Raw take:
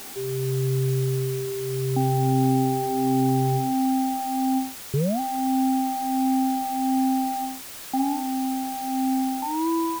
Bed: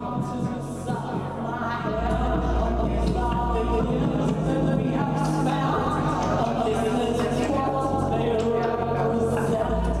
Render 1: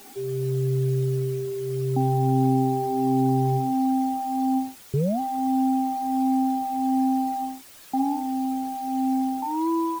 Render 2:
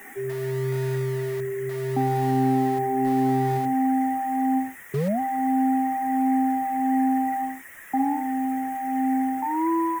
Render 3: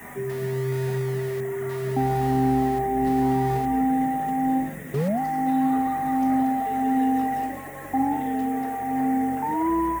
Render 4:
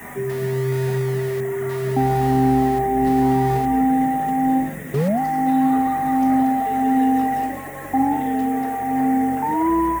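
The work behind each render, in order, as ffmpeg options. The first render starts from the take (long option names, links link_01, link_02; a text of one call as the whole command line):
ffmpeg -i in.wav -af "afftdn=noise_reduction=10:noise_floor=-39" out.wav
ffmpeg -i in.wav -filter_complex "[0:a]acrossover=split=120|6200[link_01][link_02][link_03];[link_01]aeval=exprs='(mod(79.4*val(0)+1,2)-1)/79.4':channel_layout=same[link_04];[link_02]lowpass=frequency=1900:width_type=q:width=13[link_05];[link_04][link_05][link_03]amix=inputs=3:normalize=0" out.wav
ffmpeg -i in.wav -i bed.wav -filter_complex "[1:a]volume=-14.5dB[link_01];[0:a][link_01]amix=inputs=2:normalize=0" out.wav
ffmpeg -i in.wav -af "volume=4.5dB" out.wav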